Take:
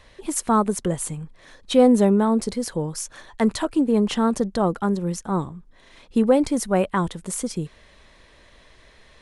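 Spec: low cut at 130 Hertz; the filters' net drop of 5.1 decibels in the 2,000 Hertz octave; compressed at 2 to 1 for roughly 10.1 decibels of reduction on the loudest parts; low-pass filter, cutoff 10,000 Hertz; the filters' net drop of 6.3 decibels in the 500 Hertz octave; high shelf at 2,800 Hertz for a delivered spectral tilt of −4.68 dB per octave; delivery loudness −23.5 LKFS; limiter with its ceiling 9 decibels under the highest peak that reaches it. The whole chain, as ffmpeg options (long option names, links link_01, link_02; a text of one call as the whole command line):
ffmpeg -i in.wav -af "highpass=130,lowpass=10000,equalizer=frequency=500:width_type=o:gain=-7,equalizer=frequency=2000:width_type=o:gain=-8,highshelf=frequency=2800:gain=4,acompressor=threshold=-33dB:ratio=2,volume=11.5dB,alimiter=limit=-14dB:level=0:latency=1" out.wav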